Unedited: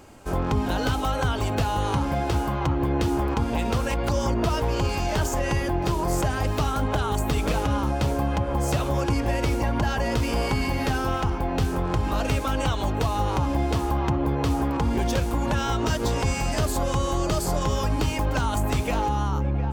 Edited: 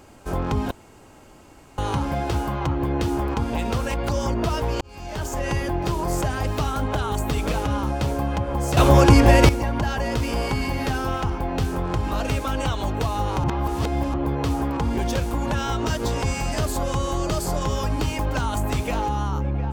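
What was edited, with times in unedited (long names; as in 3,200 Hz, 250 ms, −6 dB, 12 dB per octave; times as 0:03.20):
0:00.71–0:01.78: fill with room tone
0:04.81–0:05.49: fade in
0:08.77–0:09.49: clip gain +11 dB
0:13.44–0:14.14: reverse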